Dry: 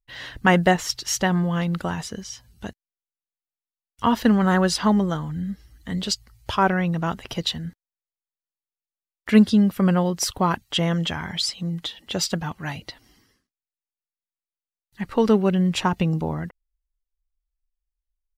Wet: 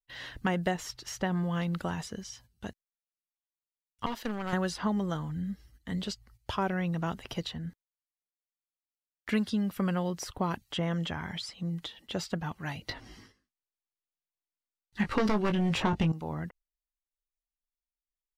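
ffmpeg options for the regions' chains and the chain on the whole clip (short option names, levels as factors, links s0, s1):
-filter_complex "[0:a]asettb=1/sr,asplit=3[s0][s1][s2];[s0]atrim=end=4.064[s3];[s1]atrim=start=4.06:end=4.53,asetpts=PTS-STARTPTS,afade=t=in:d=0.004:c=qsin,afade=t=out:st=0.466:d=0.004:c=qsin,highpass=f=540:p=1,aeval=exprs='(tanh(10*val(0)+0.7)-tanh(0.7))/10':c=same[s4];[s2]atrim=start=4.526[s5];[s3][s4]acrossfade=d=0.004:c1=hsin:c2=qsin[s6];[s6][s5]acrossfade=d=0.004:c1=qsin:c2=hsin,asettb=1/sr,asplit=3[s7][s8][s9];[s7]atrim=end=12.894[s10];[s8]atrim=start=12.89:end=16.12,asetpts=PTS-STARTPTS,afade=t=in:d=0.004:c=qsin,afade=t=out:st=3.226:d=0.004:c=qsin,adynamicsmooth=sensitivity=7.5:basefreq=7900,aeval=exprs='0.531*sin(PI/2*2.82*val(0)/0.531)':c=same,asplit=2[s11][s12];[s12]adelay=19,volume=0.447[s13];[s11][s13]amix=inputs=2:normalize=0,atrim=end_sample=142443[s14];[s9]atrim=start=16.116[s15];[s10][s14]acrossfade=d=0.004:c1=hsin:c2=qsin[s16];[s16][s15]acrossfade=d=0.004:c1=qsin:c2=hsin,agate=range=0.251:threshold=0.00398:ratio=16:detection=peak,acrossover=split=780|2200[s17][s18][s19];[s17]acompressor=threshold=0.0891:ratio=4[s20];[s18]acompressor=threshold=0.0282:ratio=4[s21];[s19]acompressor=threshold=0.0178:ratio=4[s22];[s20][s21][s22]amix=inputs=3:normalize=0,volume=0.501"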